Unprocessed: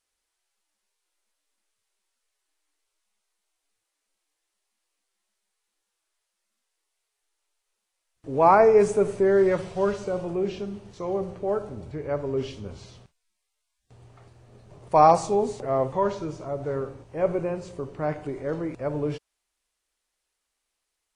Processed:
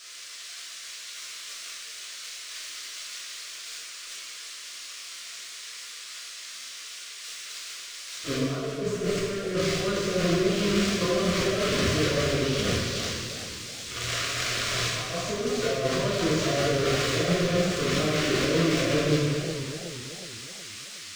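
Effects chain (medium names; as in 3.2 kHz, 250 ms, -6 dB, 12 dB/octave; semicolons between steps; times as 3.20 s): zero-crossing glitches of -14 dBFS; de-hum 99.06 Hz, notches 38; transient shaper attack +3 dB, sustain -7 dB; compressor with a negative ratio -31 dBFS, ratio -1; Butterworth band-stop 850 Hz, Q 2.4; distance through air 150 m; plate-style reverb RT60 1.5 s, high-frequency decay 1×, DRR -5.5 dB; modulated delay 372 ms, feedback 49%, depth 160 cents, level -10 dB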